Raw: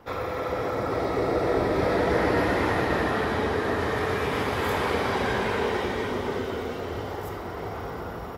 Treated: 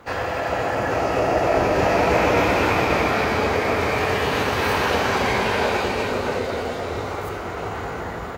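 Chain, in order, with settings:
harmonic generator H 2 −17 dB, 4 −29 dB, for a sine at −11 dBFS
formants moved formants +4 semitones
level +5 dB

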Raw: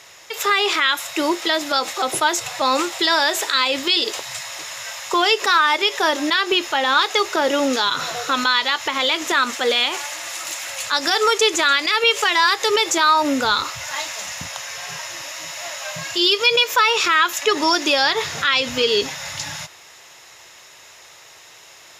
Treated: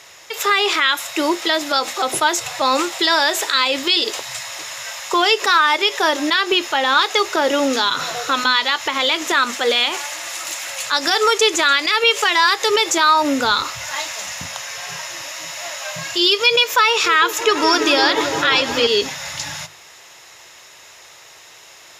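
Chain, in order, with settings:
mains-hum notches 50/100/150/200/250 Hz
0:16.87–0:18.87: echo whose low-pass opens from repeat to repeat 171 ms, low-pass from 400 Hz, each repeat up 1 octave, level −3 dB
level +1.5 dB

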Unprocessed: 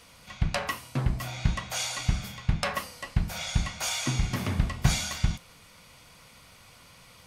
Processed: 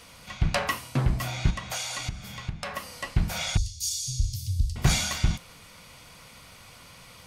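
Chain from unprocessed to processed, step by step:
0:01.50–0:02.98: downward compressor 12 to 1, threshold −33 dBFS, peak gain reduction 16 dB
0:03.57–0:04.76: elliptic band-stop filter 100–4,700 Hz, stop band 50 dB
soft clipping −15.5 dBFS, distortion −15 dB
level +4 dB

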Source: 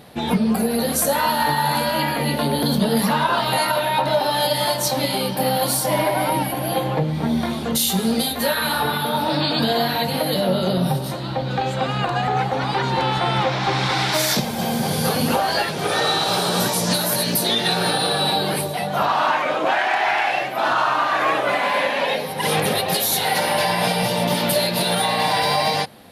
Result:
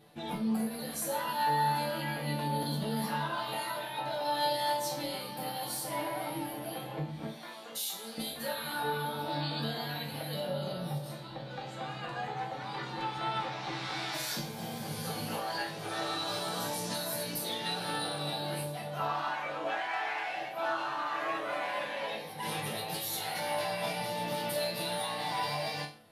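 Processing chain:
0:07.27–0:08.18: Bessel high-pass filter 620 Hz, order 2
resonators tuned to a chord A2 sus4, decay 0.39 s

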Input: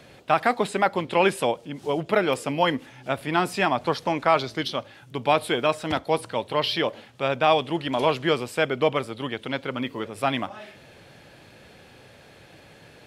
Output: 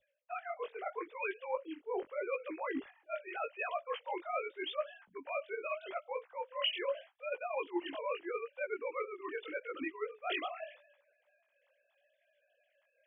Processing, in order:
three sine waves on the formant tracks
brickwall limiter −16 dBFS, peak gain reduction 9 dB
reversed playback
downward compressor 8 to 1, threshold −36 dBFS, peak gain reduction 16 dB
reversed playback
chorus effect 0.81 Hz, delay 15.5 ms, depth 7 ms
dynamic equaliser 2,700 Hz, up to +4 dB, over −59 dBFS, Q 1.3
multiband upward and downward expander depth 100%
level +2.5 dB

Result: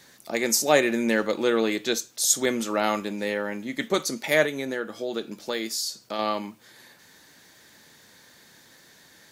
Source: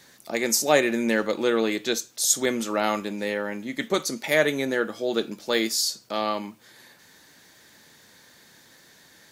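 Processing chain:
0:04.45–0:06.19: downward compressor 2.5 to 1, threshold −28 dBFS, peak gain reduction 7 dB

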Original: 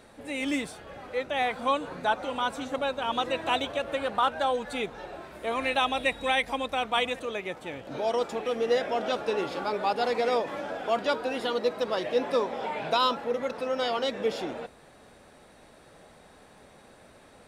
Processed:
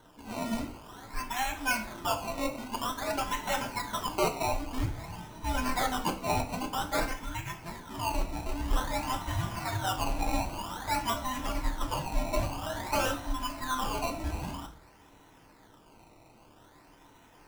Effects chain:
frequency inversion band by band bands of 500 Hz
0:04.62–0:06.05: spectral tilt −2 dB per octave
sample-and-hold swept by an LFO 18×, swing 100% 0.51 Hz
on a send: convolution reverb RT60 0.50 s, pre-delay 3 ms, DRR 4 dB
on the sum: level −5 dB

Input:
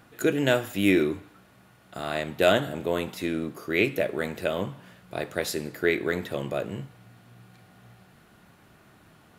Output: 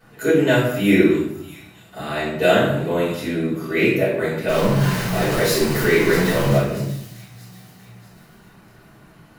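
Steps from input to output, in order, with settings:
0:04.48–0:06.57: converter with a step at zero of −24.5 dBFS
notch filter 3,400 Hz, Q 18
delay with a high-pass on its return 637 ms, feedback 41%, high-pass 4,100 Hz, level −11 dB
convolution reverb RT60 0.70 s, pre-delay 3 ms, DRR −12.5 dB
level −9 dB

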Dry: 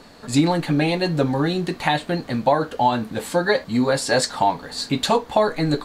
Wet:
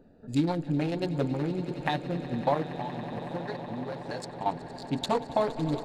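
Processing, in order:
adaptive Wiener filter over 41 samples
0:02.69–0:04.46: downward compressor 5 to 1, threshold −28 dBFS, peak gain reduction 13.5 dB
on a send: echo that builds up and dies away 93 ms, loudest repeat 8, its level −17.5 dB
on the sum: level −7.5 dB

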